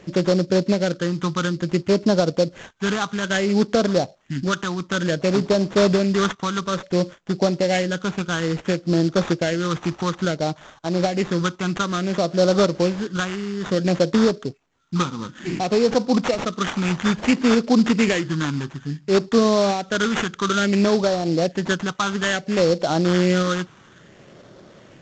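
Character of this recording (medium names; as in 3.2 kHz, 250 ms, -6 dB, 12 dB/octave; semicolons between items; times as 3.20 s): phasing stages 8, 0.58 Hz, lowest notch 570–2100 Hz; aliases and images of a low sample rate 4.9 kHz, jitter 20%; µ-law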